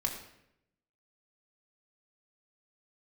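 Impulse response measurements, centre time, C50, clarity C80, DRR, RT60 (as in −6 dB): 25 ms, 6.5 dB, 8.5 dB, 1.0 dB, 0.80 s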